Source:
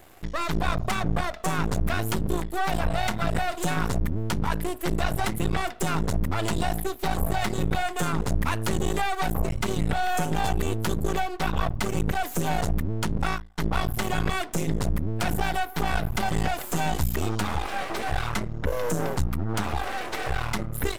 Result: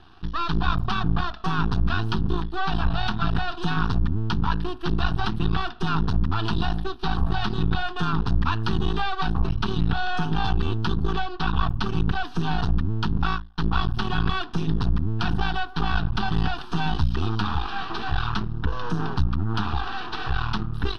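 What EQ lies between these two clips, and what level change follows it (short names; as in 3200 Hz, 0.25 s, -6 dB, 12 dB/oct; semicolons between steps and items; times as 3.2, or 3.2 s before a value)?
LPF 5600 Hz 24 dB/oct; fixed phaser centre 2100 Hz, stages 6; +4.0 dB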